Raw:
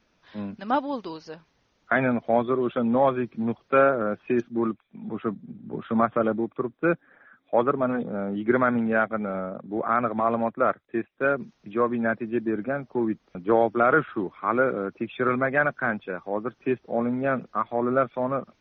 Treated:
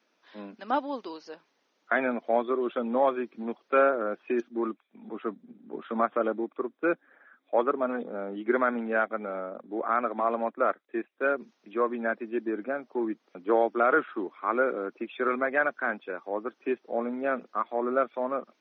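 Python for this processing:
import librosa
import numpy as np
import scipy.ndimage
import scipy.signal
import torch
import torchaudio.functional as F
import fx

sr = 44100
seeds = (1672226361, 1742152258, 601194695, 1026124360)

y = scipy.signal.sosfilt(scipy.signal.butter(4, 260.0, 'highpass', fs=sr, output='sos'), x)
y = F.gain(torch.from_numpy(y), -3.0).numpy()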